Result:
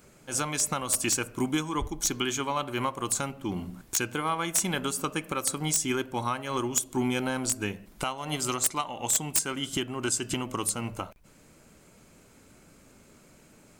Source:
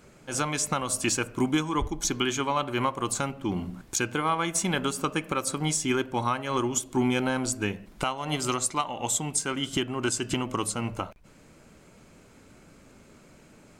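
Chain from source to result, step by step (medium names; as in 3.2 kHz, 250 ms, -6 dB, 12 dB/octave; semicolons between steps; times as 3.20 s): treble shelf 8.2 kHz +11.5 dB; integer overflow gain 11.5 dB; trim -3 dB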